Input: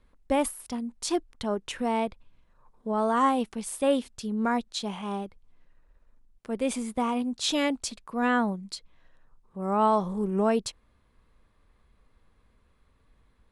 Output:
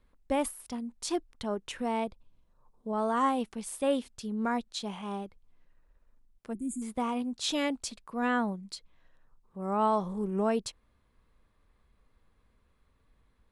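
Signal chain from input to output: 2.04–2.93 bell 1900 Hz -9.5 dB 1.3 oct; 6.53–6.82 spectral gain 380–6600 Hz -29 dB; gain -4 dB

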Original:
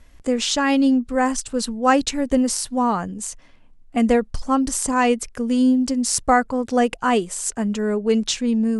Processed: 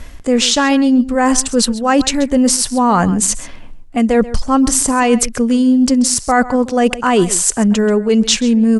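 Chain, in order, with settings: reverse; compressor 12:1, threshold -28 dBFS, peak gain reduction 18 dB; reverse; outdoor echo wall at 23 m, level -16 dB; maximiser +19.5 dB; gain -1 dB

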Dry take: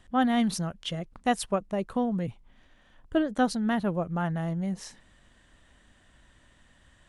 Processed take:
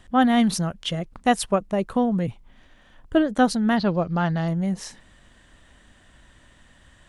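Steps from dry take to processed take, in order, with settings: 3.76–4.48 synth low-pass 4700 Hz, resonance Q 12; gain +6 dB

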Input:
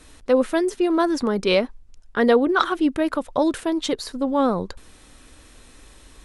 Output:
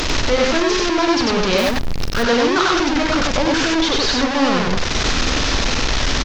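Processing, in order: delta modulation 32 kbps, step -12 dBFS; de-hum 51.55 Hz, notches 6; on a send: loudspeakers at several distances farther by 15 m -10 dB, 33 m -1 dB; 1.58–2.23 on the sum: short-mantissa float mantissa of 2-bit; gain -1.5 dB

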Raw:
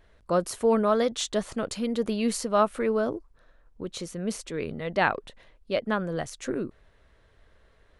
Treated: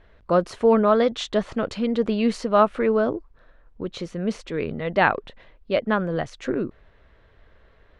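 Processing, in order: LPF 3500 Hz 12 dB/oct; gain +5 dB

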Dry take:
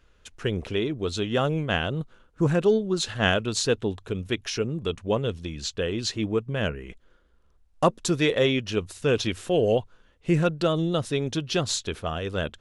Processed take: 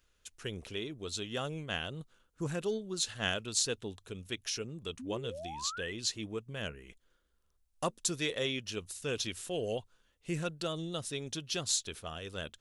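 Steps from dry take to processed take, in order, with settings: pre-emphasis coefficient 0.8; painted sound rise, 4.99–5.93, 240–2100 Hz -43 dBFS

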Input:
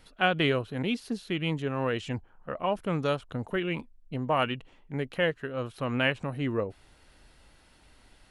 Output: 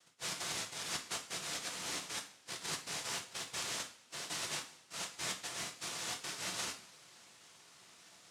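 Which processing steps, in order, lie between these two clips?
reverse; compressor 5:1, threshold -41 dBFS, peak gain reduction 19 dB; reverse; harmoniser +5 st -16 dB; noise vocoder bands 1; two-slope reverb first 0.39 s, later 1.9 s, from -20 dB, DRR 3.5 dB

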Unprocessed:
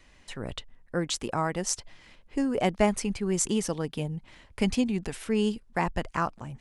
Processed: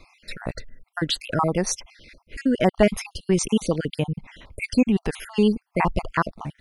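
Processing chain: random spectral dropouts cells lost 50%; bell 7500 Hz -13 dB 0.43 oct; in parallel at -2.5 dB: limiter -20.5 dBFS, peak gain reduction 10.5 dB; on the sum: gain +4.5 dB

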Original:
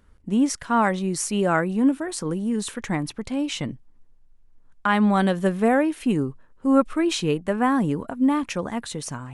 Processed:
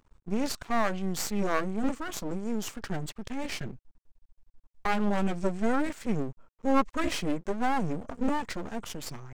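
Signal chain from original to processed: formant shift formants -4 st; half-wave rectifier; gain -1.5 dB

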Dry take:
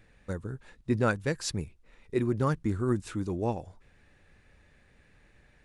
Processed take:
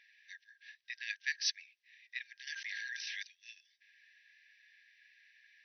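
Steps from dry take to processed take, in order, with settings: FFT band-pass 1600–6100 Hz; 2.47–3.23 fast leveller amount 100%; gain +3 dB

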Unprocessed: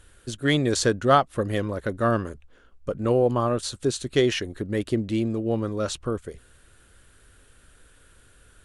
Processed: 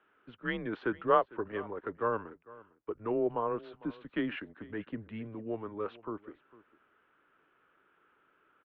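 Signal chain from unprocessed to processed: mistuned SSB -110 Hz 180–3400 Hz; three-band isolator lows -14 dB, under 320 Hz, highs -18 dB, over 2300 Hz; echo 0.452 s -20.5 dB; gain -6 dB

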